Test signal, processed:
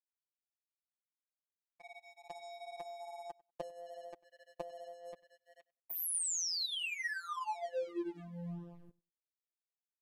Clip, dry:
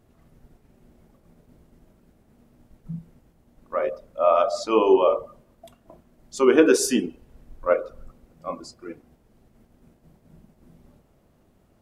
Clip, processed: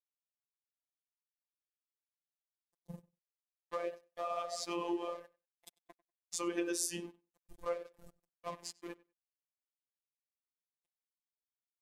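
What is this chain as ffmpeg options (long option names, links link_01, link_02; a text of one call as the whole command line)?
ffmpeg -i in.wav -filter_complex "[0:a]flanger=delay=2.5:depth=6.5:regen=19:speed=1.2:shape=sinusoidal,aemphasis=mode=production:type=50fm,acrossover=split=440|880[link_01][link_02][link_03];[link_02]alimiter=level_in=2dB:limit=-24dB:level=0:latency=1:release=120,volume=-2dB[link_04];[link_01][link_04][link_03]amix=inputs=3:normalize=0,aeval=exprs='sgn(val(0))*max(abs(val(0))-0.00708,0)':channel_layout=same,acompressor=threshold=-41dB:ratio=3,lowpass=11000,lowshelf=frequency=110:gain=-8,bandreject=frequency=1400:width=6,asplit=2[link_05][link_06];[link_06]adelay=96,lowpass=frequency=4900:poles=1,volume=-22.5dB,asplit=2[link_07][link_08];[link_08]adelay=96,lowpass=frequency=4900:poles=1,volume=0.15[link_09];[link_07][link_09]amix=inputs=2:normalize=0[link_10];[link_05][link_10]amix=inputs=2:normalize=0,afftfilt=real='hypot(re,im)*cos(PI*b)':imag='0':win_size=1024:overlap=0.75,volume=6dB" out.wav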